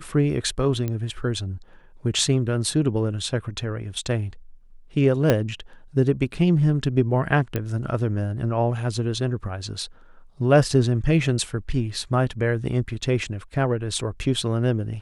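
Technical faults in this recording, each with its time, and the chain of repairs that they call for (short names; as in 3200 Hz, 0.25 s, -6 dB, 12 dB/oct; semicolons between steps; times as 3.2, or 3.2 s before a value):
0.88 pop -15 dBFS
5.3 pop -5 dBFS
7.56 pop -12 dBFS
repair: de-click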